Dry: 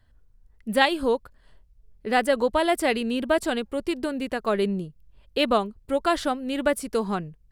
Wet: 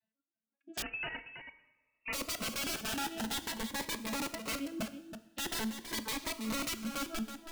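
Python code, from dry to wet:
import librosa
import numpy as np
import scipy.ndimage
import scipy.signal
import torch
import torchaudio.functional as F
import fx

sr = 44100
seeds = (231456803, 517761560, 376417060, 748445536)

y = fx.vocoder_arp(x, sr, chord='major triad', root=57, every_ms=133)
y = fx.noise_reduce_blind(y, sr, reduce_db=15)
y = scipy.signal.sosfilt(scipy.signal.butter(2, 150.0, 'highpass', fs=sr, output='sos'), y)
y = fx.dereverb_blind(y, sr, rt60_s=0.59)
y = (np.mod(10.0 ** (24.5 / 20.0) * y + 1.0, 2.0) - 1.0) / 10.0 ** (24.5 / 20.0)
y = y + 10.0 ** (-9.5 / 20.0) * np.pad(y, (int(326 * sr / 1000.0), 0))[:len(y)]
y = fx.rev_double_slope(y, sr, seeds[0], early_s=0.94, late_s=3.4, knee_db=-24, drr_db=11.0)
y = fx.freq_invert(y, sr, carrier_hz=2900, at=(0.82, 2.13))
y = fx.notch_cascade(y, sr, direction='rising', hz=0.46)
y = y * librosa.db_to_amplitude(-5.5)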